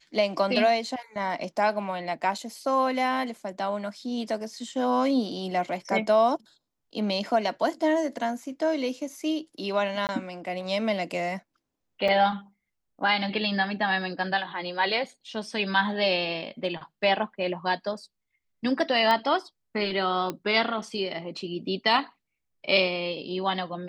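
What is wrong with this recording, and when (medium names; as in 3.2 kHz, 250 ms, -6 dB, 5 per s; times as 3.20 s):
2.38 s: dropout 4 ms
10.07–10.09 s: dropout 19 ms
12.08 s: dropout 4.4 ms
19.11 s: pop -13 dBFS
20.30 s: pop -16 dBFS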